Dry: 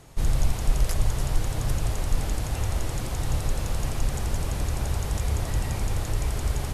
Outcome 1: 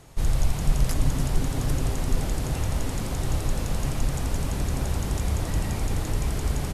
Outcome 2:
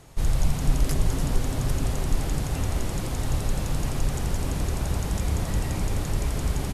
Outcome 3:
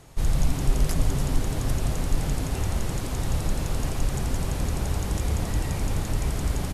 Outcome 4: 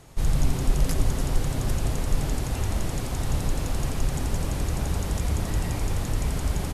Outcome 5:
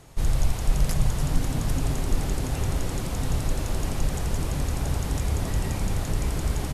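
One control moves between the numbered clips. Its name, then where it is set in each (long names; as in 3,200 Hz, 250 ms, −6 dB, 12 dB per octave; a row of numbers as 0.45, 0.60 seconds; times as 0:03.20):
echo with shifted repeats, delay time: 362, 218, 139, 89, 536 milliseconds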